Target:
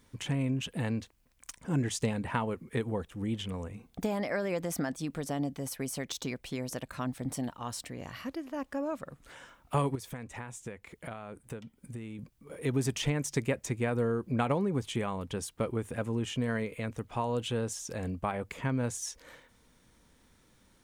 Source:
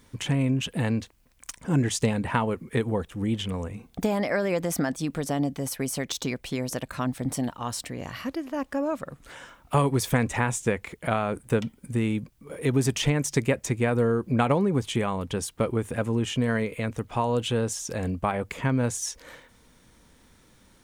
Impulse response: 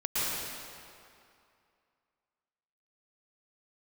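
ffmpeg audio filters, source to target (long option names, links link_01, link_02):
-filter_complex "[0:a]asettb=1/sr,asplit=3[link_01][link_02][link_03];[link_01]atrim=end=9.954[link_04];[link_02]atrim=start=9.95:end=12.19,asetpts=PTS-STARTPTS,afade=type=in:duration=0.004:curve=qsin,afade=type=out:start_time=2.236:duration=0.004:curve=qsin,acompressor=threshold=-34dB:ratio=4[link_05];[link_03]atrim=start=12.186[link_06];[link_04][link_05]acrossfade=duration=0.004:curve1=hsin:curve2=qsin[link_07];[link_07][link_06]acrossfade=duration=0.004:curve1=qsin:curve2=hsin,volume=-6.5dB"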